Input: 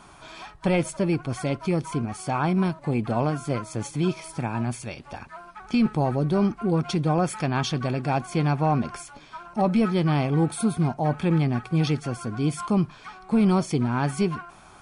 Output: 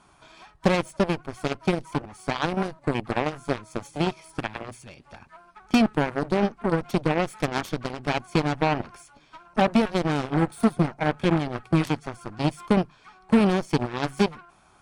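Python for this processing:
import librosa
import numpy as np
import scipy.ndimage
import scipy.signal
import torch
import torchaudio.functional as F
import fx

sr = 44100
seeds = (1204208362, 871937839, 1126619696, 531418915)

y = fx.transient(x, sr, attack_db=5, sustain_db=0)
y = fx.cheby_harmonics(y, sr, harmonics=(3, 7, 8), levels_db=(-21, -16, -28), full_scale_db=-8.5)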